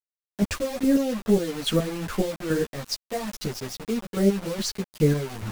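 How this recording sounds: chopped level 2.4 Hz, depth 65%, duty 30%; a quantiser's noise floor 6-bit, dither none; a shimmering, thickened sound

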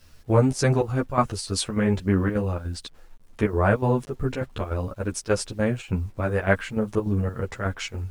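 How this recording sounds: chopped level 3.4 Hz, depth 65%, duty 75%; a quantiser's noise floor 10-bit, dither none; a shimmering, thickened sound

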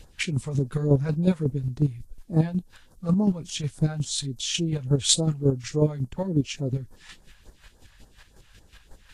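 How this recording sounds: a quantiser's noise floor 12-bit, dither triangular; phasing stages 2, 3.5 Hz, lowest notch 300–2600 Hz; chopped level 5.5 Hz, depth 60%, duty 25%; Vorbis

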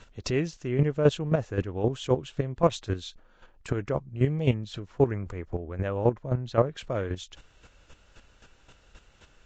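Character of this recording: chopped level 3.8 Hz, depth 65%, duty 15%; Vorbis

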